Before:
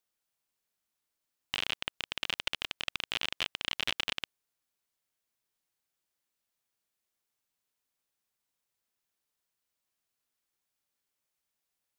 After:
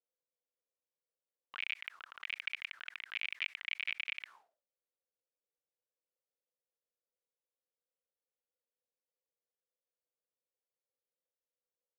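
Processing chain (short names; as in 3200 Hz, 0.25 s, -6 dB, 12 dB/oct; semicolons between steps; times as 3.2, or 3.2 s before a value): 3.77–4.18 high shelf 5600 Hz -6.5 dB; auto-wah 500–2300 Hz, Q 9.1, up, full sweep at -33.5 dBFS; sustainer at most 150 dB/s; gain +5.5 dB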